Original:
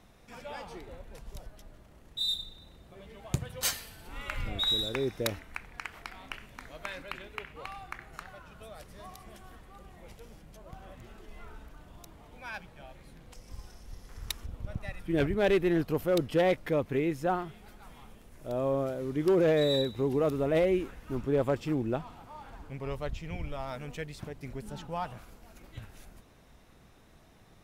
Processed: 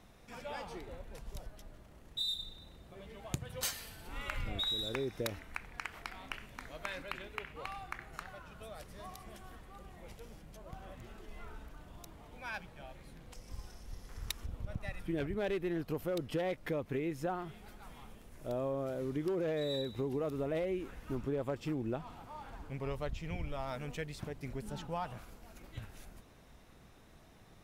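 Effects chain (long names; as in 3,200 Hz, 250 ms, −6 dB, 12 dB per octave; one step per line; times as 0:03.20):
downward compressor 5 to 1, threshold −32 dBFS, peak gain reduction 10 dB
level −1 dB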